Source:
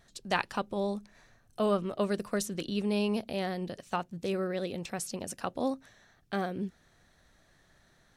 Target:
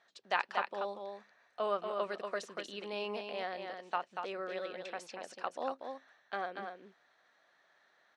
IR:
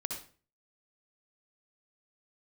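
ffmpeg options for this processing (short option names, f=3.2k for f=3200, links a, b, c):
-af "highpass=680,lowpass=5.2k,highshelf=f=3.7k:g=-10.5,aecho=1:1:237:0.531"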